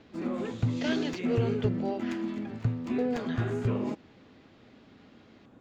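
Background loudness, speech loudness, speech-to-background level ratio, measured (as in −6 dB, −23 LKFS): −32.0 LKFS, −36.0 LKFS, −4.0 dB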